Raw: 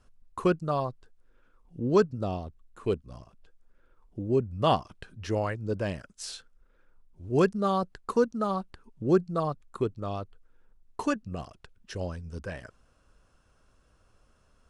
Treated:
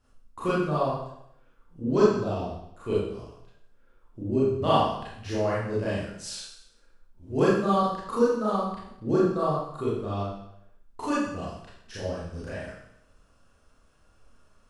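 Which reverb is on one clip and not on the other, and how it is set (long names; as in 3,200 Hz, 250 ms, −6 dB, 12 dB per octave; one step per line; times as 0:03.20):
four-comb reverb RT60 0.75 s, combs from 27 ms, DRR −9 dB
level −6.5 dB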